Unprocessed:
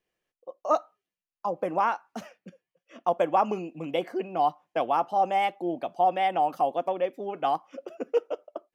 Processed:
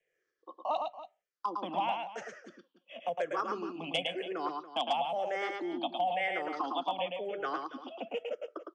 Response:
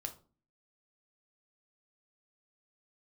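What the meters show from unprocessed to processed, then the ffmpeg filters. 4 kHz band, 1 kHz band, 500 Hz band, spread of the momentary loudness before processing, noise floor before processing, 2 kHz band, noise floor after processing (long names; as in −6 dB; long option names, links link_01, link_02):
+4.5 dB, −8.0 dB, −7.5 dB, 13 LU, below −85 dBFS, 0.0 dB, −84 dBFS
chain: -filter_complex "[0:a]afftfilt=real='re*pow(10,21/40*sin(2*PI*(0.51*log(max(b,1)*sr/1024/100)/log(2)-(-0.97)*(pts-256)/sr)))':imag='im*pow(10,21/40*sin(2*PI*(0.51*log(max(b,1)*sr/1024/100)/log(2)-(-0.97)*(pts-256)/sr)))':win_size=1024:overlap=0.75,acrossover=split=160|3000[link_01][link_02][link_03];[link_02]acompressor=threshold=-25dB:ratio=3[link_04];[link_01][link_04][link_03]amix=inputs=3:normalize=0,equalizer=frequency=3300:width_type=o:width=0.32:gain=9.5,acrossover=split=220|710|1200[link_05][link_06][link_07][link_08];[link_05]acontrast=55[link_09];[link_06]alimiter=level_in=6dB:limit=-24dB:level=0:latency=1:release=186,volume=-6dB[link_10];[link_09][link_10][link_07][link_08]amix=inputs=4:normalize=0,acrossover=split=260 5100:gain=0.1 1 0.224[link_11][link_12][link_13];[link_11][link_12][link_13]amix=inputs=3:normalize=0,aecho=1:1:109|284:0.631|0.188,asoftclip=type=hard:threshold=-18dB,volume=-4dB" -ar 22050 -c:a libmp3lame -b:a 112k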